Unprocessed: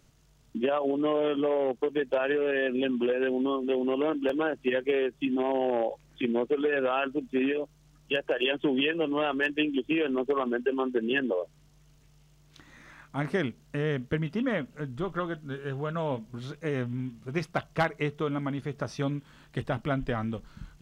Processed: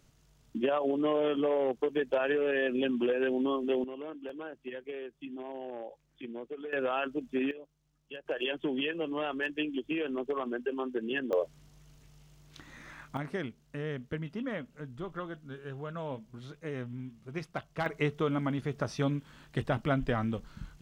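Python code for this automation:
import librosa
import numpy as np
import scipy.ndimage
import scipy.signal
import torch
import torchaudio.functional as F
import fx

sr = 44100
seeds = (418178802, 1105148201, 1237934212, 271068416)

y = fx.gain(x, sr, db=fx.steps((0.0, -2.0), (3.84, -14.0), (6.73, -4.0), (7.51, -16.0), (8.26, -6.0), (11.33, 2.0), (13.17, -7.5), (17.86, 0.0)))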